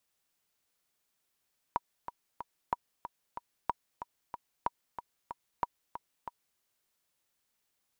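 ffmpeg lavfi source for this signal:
ffmpeg -f lavfi -i "aevalsrc='pow(10,(-15.5-10.5*gte(mod(t,3*60/186),60/186))/20)*sin(2*PI*959*mod(t,60/186))*exp(-6.91*mod(t,60/186)/0.03)':duration=4.83:sample_rate=44100" out.wav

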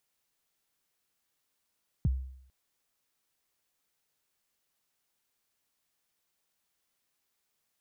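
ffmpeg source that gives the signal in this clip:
ffmpeg -f lavfi -i "aevalsrc='0.0891*pow(10,-3*t/0.68)*sin(2*PI*(190*0.027/log(65/190)*(exp(log(65/190)*min(t,0.027)/0.027)-1)+65*max(t-0.027,0)))':duration=0.45:sample_rate=44100" out.wav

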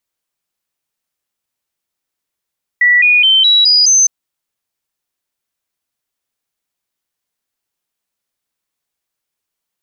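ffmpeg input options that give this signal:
ffmpeg -f lavfi -i "aevalsrc='0.501*clip(min(mod(t,0.21),0.21-mod(t,0.21))/0.005,0,1)*sin(2*PI*1950*pow(2,floor(t/0.21)/3)*mod(t,0.21))':duration=1.26:sample_rate=44100" out.wav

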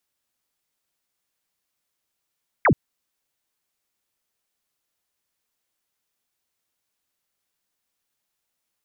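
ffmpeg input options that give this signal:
ffmpeg -f lavfi -i "aevalsrc='0.224*clip(t/0.002,0,1)*clip((0.08-t)/0.002,0,1)*sin(2*PI*2400*0.08/log(94/2400)*(exp(log(94/2400)*t/0.08)-1))':duration=0.08:sample_rate=44100" out.wav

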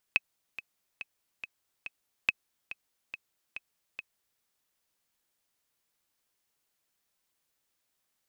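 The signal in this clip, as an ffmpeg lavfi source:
ffmpeg -f lavfi -i "aevalsrc='pow(10,(-10-15*gte(mod(t,5*60/141),60/141))/20)*sin(2*PI*2560*mod(t,60/141))*exp(-6.91*mod(t,60/141)/0.03)':duration=4.25:sample_rate=44100" out.wav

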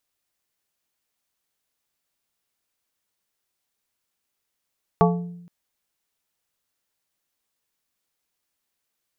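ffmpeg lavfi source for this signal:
ffmpeg -f lavfi -i "aevalsrc='0.188*pow(10,-3*t/0.91)*sin(2*PI*174*t)+0.168*pow(10,-3*t/0.479)*sin(2*PI*435*t)+0.15*pow(10,-3*t/0.345)*sin(2*PI*696*t)+0.133*pow(10,-3*t/0.295)*sin(2*PI*870*t)+0.119*pow(10,-3*t/0.245)*sin(2*PI*1131*t)':duration=0.47:sample_rate=44100" out.wav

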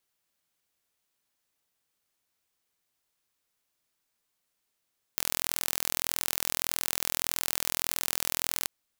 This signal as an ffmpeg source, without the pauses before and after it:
ffmpeg -f lavfi -i "aevalsrc='0.841*eq(mod(n,1058),0)':duration=3.5:sample_rate=44100" out.wav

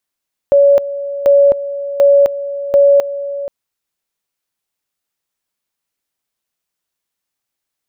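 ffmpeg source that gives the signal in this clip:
ffmpeg -f lavfi -i "aevalsrc='pow(10,(-5-14*gte(mod(t,0.74),0.26))/20)*sin(2*PI*564*t)':duration=2.96:sample_rate=44100" out.wav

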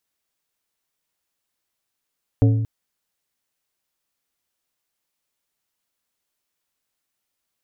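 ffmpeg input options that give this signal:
ffmpeg -f lavfi -i "aevalsrc='0.299*pow(10,-3*t/1.19)*sin(2*PI*111*t)+0.15*pow(10,-3*t/0.627)*sin(2*PI*277.5*t)+0.075*pow(10,-3*t/0.451)*sin(2*PI*444*t)+0.0376*pow(10,-3*t/0.386)*sin(2*PI*555*t)+0.0188*pow(10,-3*t/0.321)*sin(2*PI*721.5*t)':duration=0.23:sample_rate=44100" out.wav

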